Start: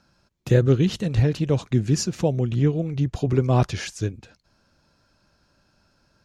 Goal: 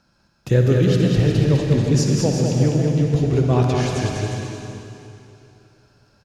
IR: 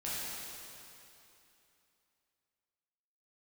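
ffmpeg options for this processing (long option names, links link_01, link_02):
-filter_complex "[0:a]aecho=1:1:200|360|488|590.4|672.3:0.631|0.398|0.251|0.158|0.1,asplit=2[link_01][link_02];[1:a]atrim=start_sample=2205,adelay=56[link_03];[link_02][link_03]afir=irnorm=-1:irlink=0,volume=-6.5dB[link_04];[link_01][link_04]amix=inputs=2:normalize=0"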